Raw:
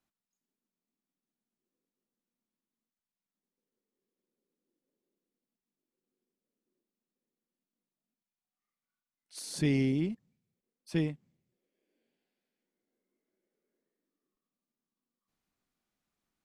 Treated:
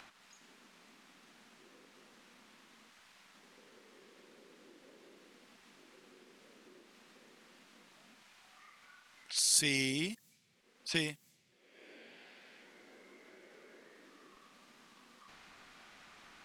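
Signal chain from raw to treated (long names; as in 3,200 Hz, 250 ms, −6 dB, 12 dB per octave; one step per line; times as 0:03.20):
low-pass that shuts in the quiet parts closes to 1,800 Hz, open at −36.5 dBFS
first-order pre-emphasis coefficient 0.97
in parallel at −1 dB: upward compression, threshold −33 dBFS
on the sum: level +8 dB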